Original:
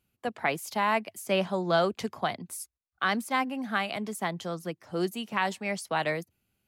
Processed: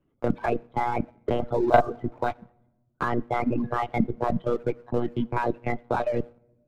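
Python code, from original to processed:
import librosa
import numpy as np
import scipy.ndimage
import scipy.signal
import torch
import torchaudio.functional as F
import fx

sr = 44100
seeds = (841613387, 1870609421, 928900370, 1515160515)

y = fx.spec_ripple(x, sr, per_octave=1.5, drift_hz=1.6, depth_db=15)
y = fx.peak_eq(y, sr, hz=3000.0, db=-14.5, octaves=0.55)
y = fx.level_steps(y, sr, step_db=17)
y = fx.lpc_monotone(y, sr, seeds[0], pitch_hz=120.0, order=10)
y = fx.peak_eq(y, sr, hz=340.0, db=10.5, octaves=2.9)
y = fx.notch(y, sr, hz=1800.0, q=12.0)
y = fx.room_shoebox(y, sr, seeds[1], volume_m3=300.0, walls='mixed', distance_m=0.31)
y = fx.leveller(y, sr, passes=1)
y = fx.dereverb_blind(y, sr, rt60_s=1.0)
y = fx.band_squash(y, sr, depth_pct=40)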